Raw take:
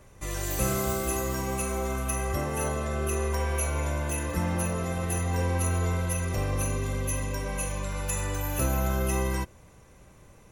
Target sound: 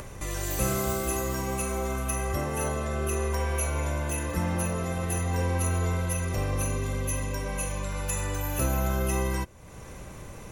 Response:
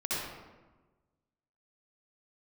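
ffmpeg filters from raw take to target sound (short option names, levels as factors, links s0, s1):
-af "acompressor=mode=upward:threshold=0.0316:ratio=2.5"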